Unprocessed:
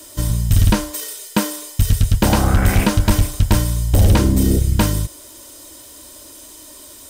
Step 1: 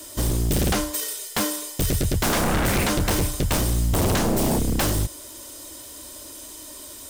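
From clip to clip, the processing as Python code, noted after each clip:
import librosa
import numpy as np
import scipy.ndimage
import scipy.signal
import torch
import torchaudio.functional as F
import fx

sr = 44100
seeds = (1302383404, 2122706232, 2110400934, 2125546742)

y = 10.0 ** (-16.5 / 20.0) * (np.abs((x / 10.0 ** (-16.5 / 20.0) + 3.0) % 4.0 - 2.0) - 1.0)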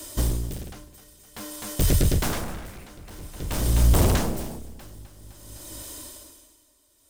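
y = fx.low_shelf(x, sr, hz=86.0, db=7.0)
y = fx.echo_feedback(y, sr, ms=256, feedback_pct=35, wet_db=-9)
y = y * 10.0 ** (-25 * (0.5 - 0.5 * np.cos(2.0 * np.pi * 0.51 * np.arange(len(y)) / sr)) / 20.0)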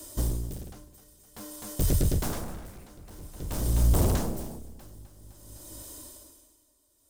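y = fx.peak_eq(x, sr, hz=2400.0, db=-7.0, octaves=1.9)
y = y * librosa.db_to_amplitude(-4.0)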